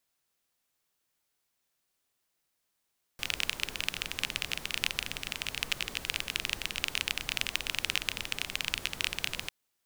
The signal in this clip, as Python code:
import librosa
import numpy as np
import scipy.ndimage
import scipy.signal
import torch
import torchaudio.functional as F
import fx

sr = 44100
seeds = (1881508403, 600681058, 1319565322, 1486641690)

y = fx.rain(sr, seeds[0], length_s=6.3, drops_per_s=21.0, hz=2700.0, bed_db=-9.0)